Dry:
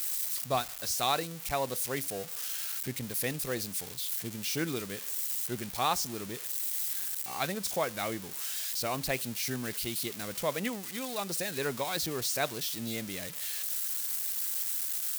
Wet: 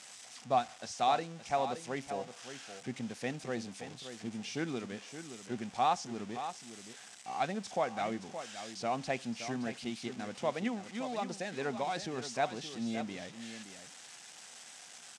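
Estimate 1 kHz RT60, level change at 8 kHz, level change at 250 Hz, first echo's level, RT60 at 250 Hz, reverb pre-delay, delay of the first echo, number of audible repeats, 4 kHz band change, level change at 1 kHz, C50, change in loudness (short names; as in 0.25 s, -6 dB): none, -13.0 dB, 0.0 dB, -10.5 dB, none, none, 0.571 s, 1, -8.0 dB, +1.5 dB, none, -5.0 dB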